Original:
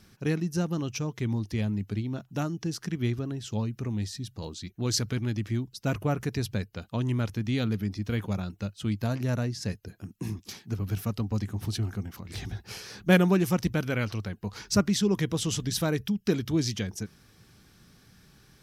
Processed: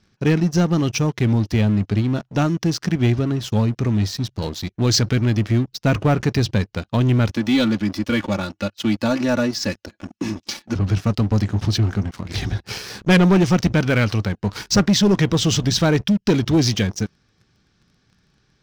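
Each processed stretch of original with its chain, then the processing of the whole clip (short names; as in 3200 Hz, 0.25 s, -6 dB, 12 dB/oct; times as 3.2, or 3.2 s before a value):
7.31–10.76 HPF 250 Hz 6 dB/oct + comb 3.5 ms, depth 81%
whole clip: LPF 6300 Hz 24 dB/oct; sample leveller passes 3; gain +1 dB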